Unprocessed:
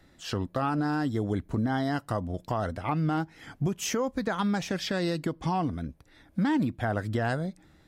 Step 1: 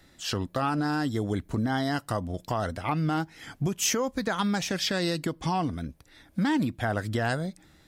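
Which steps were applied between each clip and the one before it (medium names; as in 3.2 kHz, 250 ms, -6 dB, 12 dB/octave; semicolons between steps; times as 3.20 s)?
treble shelf 2.4 kHz +8 dB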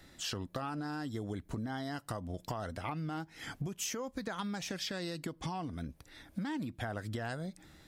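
compression 6:1, threshold -36 dBFS, peak gain reduction 13 dB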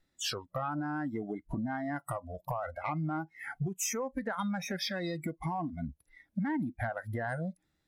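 spectral noise reduction 26 dB; in parallel at -8 dB: sine folder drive 3 dB, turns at -25.5 dBFS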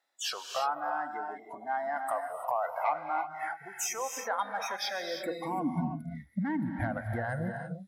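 gated-style reverb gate 360 ms rising, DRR 5 dB; high-pass sweep 750 Hz -> 61 Hz, 4.99–6.46 s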